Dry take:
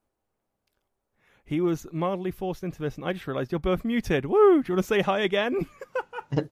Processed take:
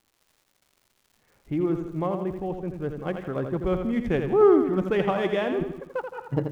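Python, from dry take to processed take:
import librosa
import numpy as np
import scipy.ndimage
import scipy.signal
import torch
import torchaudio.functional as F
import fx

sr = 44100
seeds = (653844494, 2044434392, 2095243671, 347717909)

p1 = fx.wiener(x, sr, points=9)
p2 = fx.high_shelf(p1, sr, hz=2100.0, db=-9.5)
p3 = fx.dmg_crackle(p2, sr, seeds[0], per_s=200.0, level_db=-49.0)
y = p3 + fx.echo_feedback(p3, sr, ms=83, feedback_pct=48, wet_db=-7.0, dry=0)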